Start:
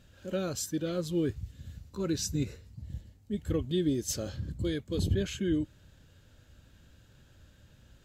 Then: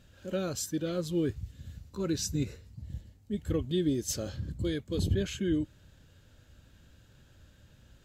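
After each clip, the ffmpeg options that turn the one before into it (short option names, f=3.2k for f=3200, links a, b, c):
-af anull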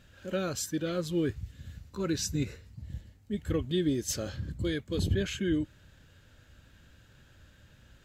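-af "equalizer=f=1.8k:w=0.89:g=5.5"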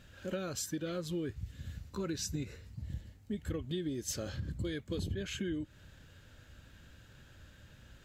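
-af "acompressor=threshold=-35dB:ratio=6,volume=1dB"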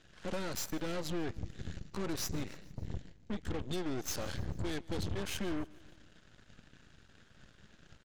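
-af "aresample=16000,asoftclip=type=tanh:threshold=-38.5dB,aresample=44100,aeval=exprs='0.0237*(cos(1*acos(clip(val(0)/0.0237,-1,1)))-cos(1*PI/2))+0.00237*(cos(3*acos(clip(val(0)/0.0237,-1,1)))-cos(3*PI/2))+0.00299*(cos(4*acos(clip(val(0)/0.0237,-1,1)))-cos(4*PI/2))+0.00299*(cos(7*acos(clip(val(0)/0.0237,-1,1)))-cos(7*PI/2))+0.0015*(cos(8*acos(clip(val(0)/0.0237,-1,1)))-cos(8*PI/2))':c=same,aecho=1:1:147|294|441|588:0.0708|0.0411|0.0238|0.0138,volume=6.5dB"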